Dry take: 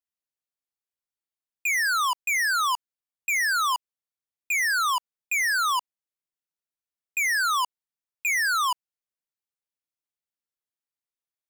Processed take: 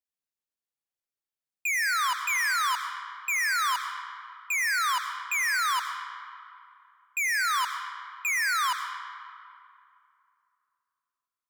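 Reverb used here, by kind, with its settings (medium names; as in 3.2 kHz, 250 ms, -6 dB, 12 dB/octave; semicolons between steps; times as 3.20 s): algorithmic reverb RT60 2.6 s, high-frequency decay 0.6×, pre-delay 55 ms, DRR 6.5 dB; trim -3 dB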